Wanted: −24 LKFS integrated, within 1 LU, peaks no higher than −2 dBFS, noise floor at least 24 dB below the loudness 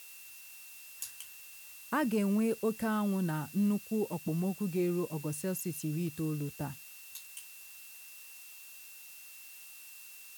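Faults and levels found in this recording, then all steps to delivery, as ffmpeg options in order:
interfering tone 2,700 Hz; level of the tone −55 dBFS; background noise floor −51 dBFS; target noise floor −58 dBFS; integrated loudness −34.0 LKFS; sample peak −21.0 dBFS; target loudness −24.0 LKFS
→ -af "bandreject=frequency=2700:width=30"
-af "afftdn=noise_reduction=7:noise_floor=-51"
-af "volume=10dB"

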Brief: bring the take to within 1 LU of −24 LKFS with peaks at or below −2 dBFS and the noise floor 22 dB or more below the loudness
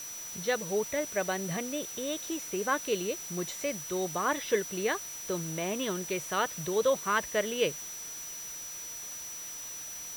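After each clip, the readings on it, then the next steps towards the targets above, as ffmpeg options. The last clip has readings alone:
interfering tone 5,900 Hz; level of the tone −40 dBFS; background noise floor −42 dBFS; target noise floor −55 dBFS; integrated loudness −32.5 LKFS; sample peak −14.5 dBFS; target loudness −24.0 LKFS
→ -af "bandreject=frequency=5900:width=30"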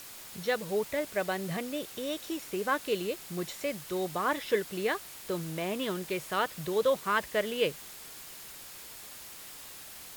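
interfering tone none found; background noise floor −47 dBFS; target noise floor −54 dBFS
→ -af "afftdn=noise_reduction=7:noise_floor=-47"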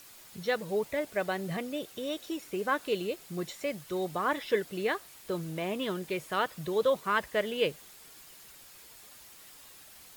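background noise floor −53 dBFS; target noise floor −55 dBFS
→ -af "afftdn=noise_reduction=6:noise_floor=-53"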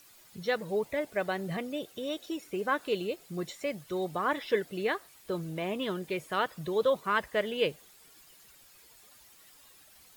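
background noise floor −58 dBFS; integrated loudness −32.5 LKFS; sample peak −15.0 dBFS; target loudness −24.0 LKFS
→ -af "volume=8.5dB"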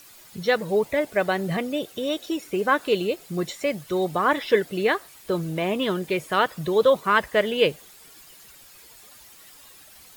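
integrated loudness −24.0 LKFS; sample peak −6.5 dBFS; background noise floor −49 dBFS

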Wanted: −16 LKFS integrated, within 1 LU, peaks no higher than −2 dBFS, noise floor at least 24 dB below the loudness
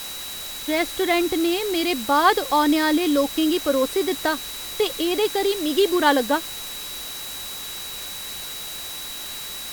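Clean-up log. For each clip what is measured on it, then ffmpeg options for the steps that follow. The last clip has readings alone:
interfering tone 3,900 Hz; level of the tone −35 dBFS; background noise floor −33 dBFS; target noise floor −47 dBFS; integrated loudness −22.5 LKFS; sample peak −5.0 dBFS; target loudness −16.0 LKFS
→ -af "bandreject=frequency=3900:width=30"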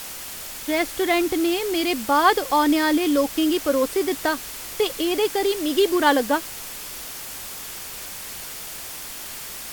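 interfering tone none found; background noise floor −35 dBFS; target noise floor −47 dBFS
→ -af "afftdn=noise_reduction=12:noise_floor=-35"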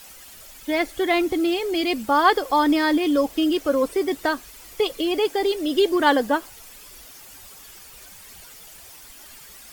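background noise floor −45 dBFS; target noise floor −46 dBFS
→ -af "afftdn=noise_reduction=6:noise_floor=-45"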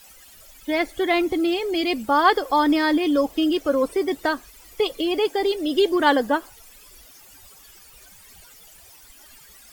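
background noise floor −49 dBFS; integrated loudness −21.5 LKFS; sample peak −5.5 dBFS; target loudness −16.0 LKFS
→ -af "volume=5.5dB,alimiter=limit=-2dB:level=0:latency=1"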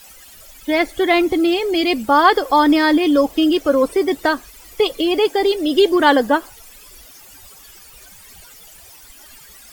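integrated loudness −16.0 LKFS; sample peak −2.0 dBFS; background noise floor −43 dBFS

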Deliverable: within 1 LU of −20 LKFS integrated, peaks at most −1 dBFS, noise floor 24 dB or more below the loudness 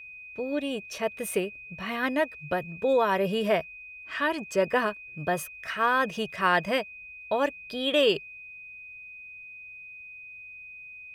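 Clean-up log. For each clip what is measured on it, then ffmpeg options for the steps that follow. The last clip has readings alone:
interfering tone 2,500 Hz; level of the tone −42 dBFS; integrated loudness −27.5 LKFS; sample peak −10.0 dBFS; target loudness −20.0 LKFS
→ -af "bandreject=frequency=2500:width=30"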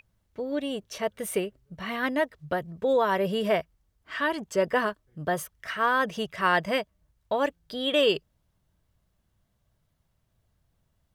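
interfering tone none found; integrated loudness −28.0 LKFS; sample peak −10.5 dBFS; target loudness −20.0 LKFS
→ -af "volume=8dB"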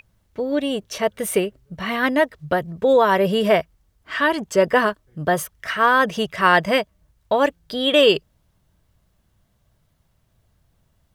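integrated loudness −20.0 LKFS; sample peak −2.5 dBFS; background noise floor −65 dBFS

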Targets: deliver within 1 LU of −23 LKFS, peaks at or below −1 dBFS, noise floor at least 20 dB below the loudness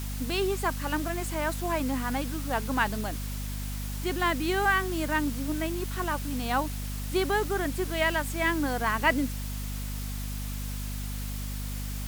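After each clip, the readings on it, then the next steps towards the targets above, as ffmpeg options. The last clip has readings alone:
mains hum 50 Hz; hum harmonics up to 250 Hz; level of the hum −32 dBFS; background noise floor −34 dBFS; target noise floor −50 dBFS; integrated loudness −29.5 LKFS; sample peak −10.5 dBFS; target loudness −23.0 LKFS
→ -af "bandreject=frequency=50:width_type=h:width=6,bandreject=frequency=100:width_type=h:width=6,bandreject=frequency=150:width_type=h:width=6,bandreject=frequency=200:width_type=h:width=6,bandreject=frequency=250:width_type=h:width=6"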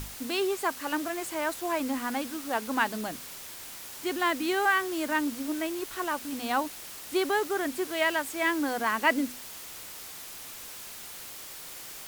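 mains hum none found; background noise floor −43 dBFS; target noise floor −51 dBFS
→ -af "afftdn=noise_reduction=8:noise_floor=-43"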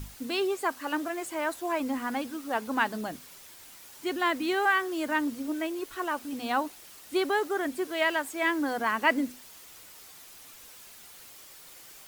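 background noise floor −50 dBFS; integrated loudness −29.5 LKFS; sample peak −10.5 dBFS; target loudness −23.0 LKFS
→ -af "volume=6.5dB"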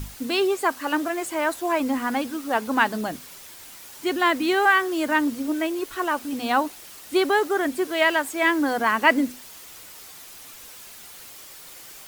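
integrated loudness −23.0 LKFS; sample peak −4.0 dBFS; background noise floor −44 dBFS

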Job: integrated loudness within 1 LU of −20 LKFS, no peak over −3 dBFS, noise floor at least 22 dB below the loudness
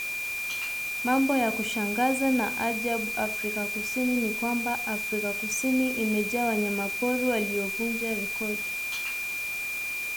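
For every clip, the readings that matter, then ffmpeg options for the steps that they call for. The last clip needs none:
interfering tone 2,400 Hz; level of the tone −30 dBFS; background noise floor −32 dBFS; target noise floor −49 dBFS; integrated loudness −27.0 LKFS; sample peak −13.5 dBFS; target loudness −20.0 LKFS
→ -af "bandreject=frequency=2400:width=30"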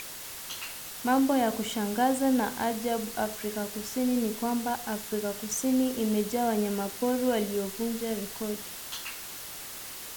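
interfering tone none found; background noise floor −41 dBFS; target noise floor −52 dBFS
→ -af "afftdn=noise_reduction=11:noise_floor=-41"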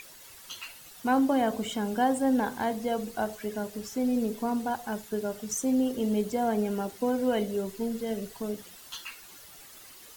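background noise floor −50 dBFS; target noise floor −52 dBFS
→ -af "afftdn=noise_reduction=6:noise_floor=-50"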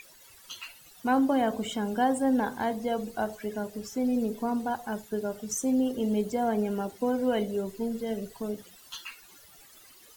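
background noise floor −54 dBFS; integrated loudness −29.5 LKFS; sample peak −14.5 dBFS; target loudness −20.0 LKFS
→ -af "volume=9.5dB"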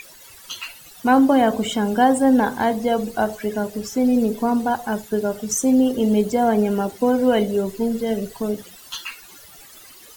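integrated loudness −20.0 LKFS; sample peak −5.0 dBFS; background noise floor −45 dBFS

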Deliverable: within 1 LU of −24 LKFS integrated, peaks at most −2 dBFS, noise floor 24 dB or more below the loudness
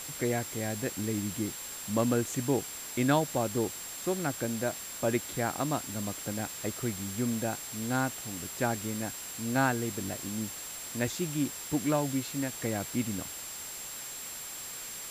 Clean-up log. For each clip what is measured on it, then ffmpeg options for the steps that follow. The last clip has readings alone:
interfering tone 7,500 Hz; level of the tone −42 dBFS; background noise floor −41 dBFS; target noise floor −57 dBFS; integrated loudness −32.5 LKFS; sample peak −13.5 dBFS; target loudness −24.0 LKFS
→ -af "bandreject=frequency=7500:width=30"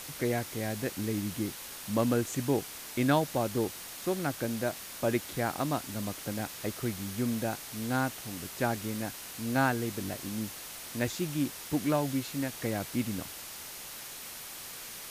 interfering tone none found; background noise floor −44 dBFS; target noise floor −57 dBFS
→ -af "afftdn=noise_reduction=13:noise_floor=-44"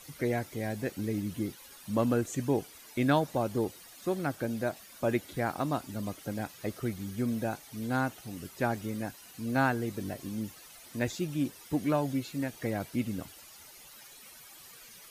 background noise floor −52 dBFS; target noise floor −57 dBFS
→ -af "afftdn=noise_reduction=6:noise_floor=-52"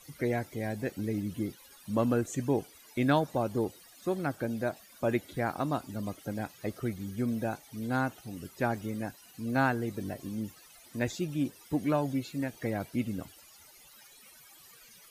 background noise floor −56 dBFS; target noise floor −57 dBFS
→ -af "afftdn=noise_reduction=6:noise_floor=-56"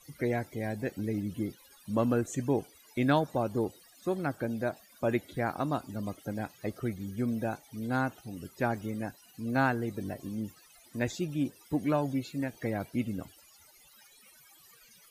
background noise floor −59 dBFS; integrated loudness −33.0 LKFS; sample peak −14.0 dBFS; target loudness −24.0 LKFS
→ -af "volume=9dB"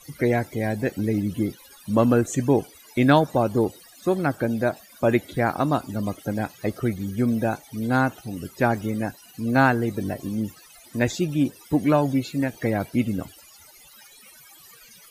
integrated loudness −24.0 LKFS; sample peak −5.0 dBFS; background noise floor −50 dBFS

